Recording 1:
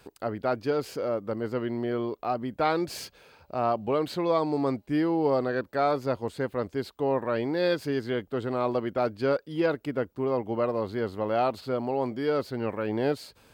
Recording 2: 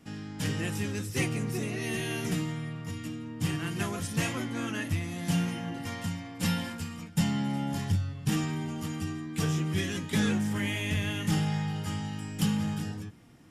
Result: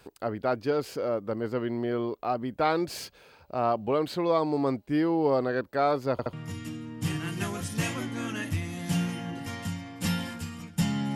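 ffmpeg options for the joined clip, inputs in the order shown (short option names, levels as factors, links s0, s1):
-filter_complex "[0:a]apad=whole_dur=11.15,atrim=end=11.15,asplit=3[s0][s1][s2];[s0]atrim=end=6.192[s3];[s1]atrim=start=6.118:end=6.192[s4];[s2]atrim=start=6.118:end=6.192[s5];[1:a]atrim=start=2.718:end=7.54[s6];[s3][s4]acrossfade=d=0.004:c1=hsin:c2=hsin[s7];[s7][s5]acrossfade=d=0.004:c1=hsin:c2=hsin[s8];[s8][s6]acrossfade=d=0.004:c1=hsin:c2=hsin"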